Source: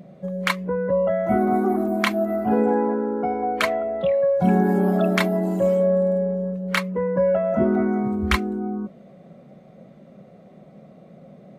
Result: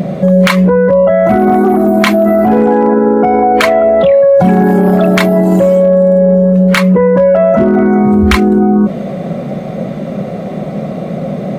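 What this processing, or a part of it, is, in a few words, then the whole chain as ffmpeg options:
loud club master: -af "acompressor=threshold=-25dB:ratio=2,asoftclip=type=hard:threshold=-17.5dB,alimiter=level_in=28.5dB:limit=-1dB:release=50:level=0:latency=1,volume=-1dB"

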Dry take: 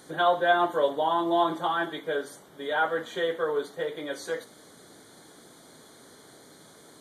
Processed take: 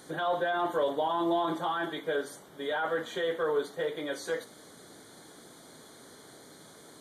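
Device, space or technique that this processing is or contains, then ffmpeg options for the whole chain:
de-esser from a sidechain: -filter_complex "[0:a]asplit=2[a][b];[b]highpass=f=5.5k:p=1,apad=whole_len=308794[c];[a][c]sidechaincompress=threshold=-41dB:ratio=8:attack=2.4:release=23"

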